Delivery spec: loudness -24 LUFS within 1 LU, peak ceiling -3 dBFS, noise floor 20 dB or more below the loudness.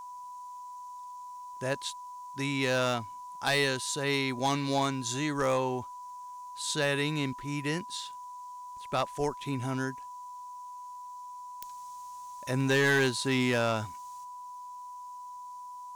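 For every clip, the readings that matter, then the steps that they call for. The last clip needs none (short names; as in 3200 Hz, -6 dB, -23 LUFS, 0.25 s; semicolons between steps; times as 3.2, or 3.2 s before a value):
clipped 0.4%; flat tops at -20.5 dBFS; steady tone 990 Hz; tone level -41 dBFS; loudness -30.0 LUFS; peak -20.5 dBFS; loudness target -24.0 LUFS
-> clip repair -20.5 dBFS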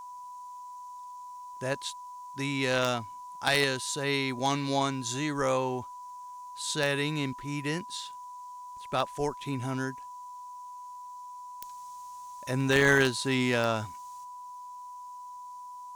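clipped 0.0%; steady tone 990 Hz; tone level -41 dBFS
-> notch 990 Hz, Q 30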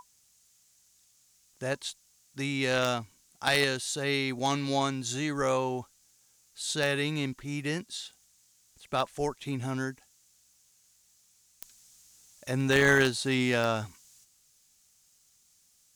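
steady tone none; loudness -29.5 LUFS; peak -11.0 dBFS; loudness target -24.0 LUFS
-> gain +5.5 dB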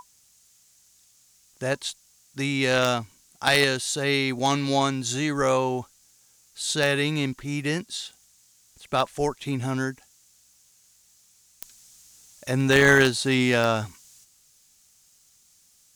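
loudness -24.0 LUFS; peak -5.5 dBFS; noise floor -60 dBFS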